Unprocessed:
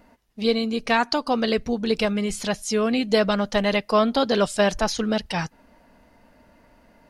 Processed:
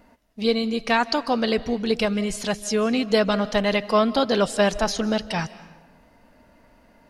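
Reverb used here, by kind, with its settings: digital reverb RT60 1.1 s, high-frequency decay 0.8×, pre-delay 0.115 s, DRR 16.5 dB

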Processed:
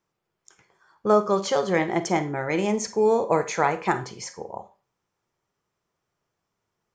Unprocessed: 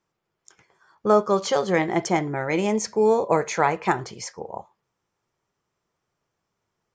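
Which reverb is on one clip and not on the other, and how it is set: Schroeder reverb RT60 0.32 s, combs from 31 ms, DRR 11.5 dB; gain -1.5 dB

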